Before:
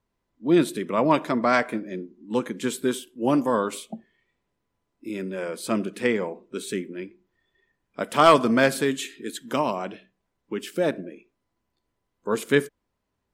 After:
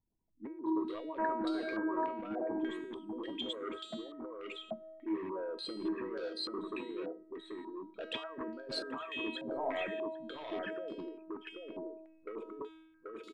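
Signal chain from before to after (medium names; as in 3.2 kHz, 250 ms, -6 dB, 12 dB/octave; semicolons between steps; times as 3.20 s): resonances exaggerated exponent 3; peaking EQ 210 Hz +2.5 dB 1.4 oct; band-stop 590 Hz, Q 12; de-hum 319.7 Hz, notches 35; compressor with a negative ratio -29 dBFS, ratio -1; overload inside the chain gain 25.5 dB; feedback comb 320 Hz, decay 0.7 s, mix 90%; delay 784 ms -3 dB; step-sequenced low-pass 3.4 Hz 780–4300 Hz; trim +5 dB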